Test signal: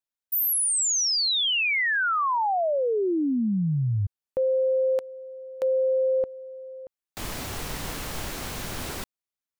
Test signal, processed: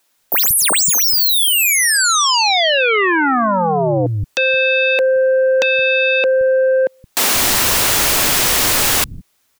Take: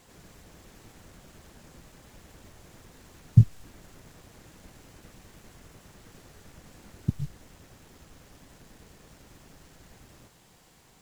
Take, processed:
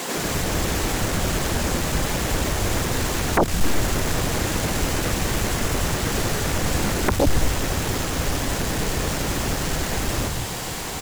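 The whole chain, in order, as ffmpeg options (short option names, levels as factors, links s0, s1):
-filter_complex "[0:a]acompressor=threshold=0.0316:ratio=4:attack=5.6:release=28:knee=1:detection=peak,aeval=exprs='0.106*sin(PI/2*7.94*val(0)/0.106)':c=same,acrossover=split=180[s0][s1];[s0]adelay=170[s2];[s2][s1]amix=inputs=2:normalize=0,volume=2.51"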